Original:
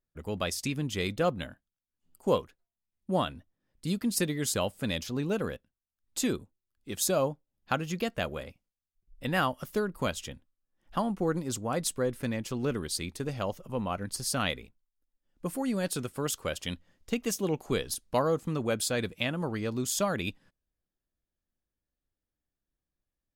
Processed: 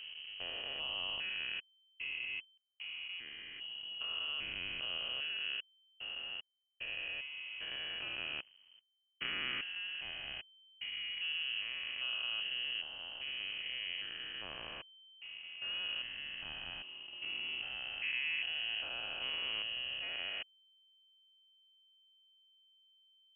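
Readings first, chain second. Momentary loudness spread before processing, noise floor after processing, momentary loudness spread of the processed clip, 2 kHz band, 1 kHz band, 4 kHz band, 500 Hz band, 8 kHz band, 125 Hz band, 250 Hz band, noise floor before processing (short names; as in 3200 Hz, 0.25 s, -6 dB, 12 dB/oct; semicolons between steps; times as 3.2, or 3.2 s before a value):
10 LU, -71 dBFS, 9 LU, -0.5 dB, -18.5 dB, +3.0 dB, -26.0 dB, under -40 dB, -29.0 dB, -30.0 dB, under -85 dBFS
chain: stepped spectrum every 0.4 s; backlash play -46 dBFS; inverted band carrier 3100 Hz; gain -4 dB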